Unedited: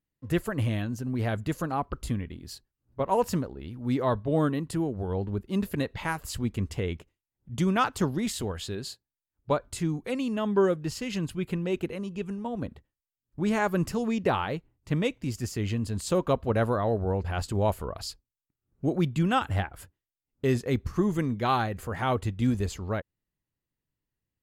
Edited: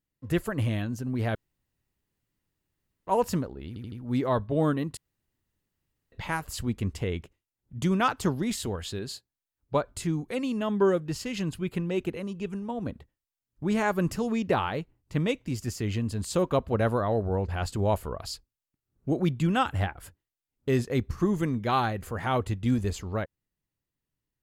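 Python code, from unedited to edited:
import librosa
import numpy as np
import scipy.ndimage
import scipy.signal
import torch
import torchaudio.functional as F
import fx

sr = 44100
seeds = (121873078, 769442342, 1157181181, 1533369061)

y = fx.edit(x, sr, fx.room_tone_fill(start_s=1.35, length_s=1.72),
    fx.stutter(start_s=3.68, slice_s=0.08, count=4),
    fx.room_tone_fill(start_s=4.73, length_s=1.15), tone=tone)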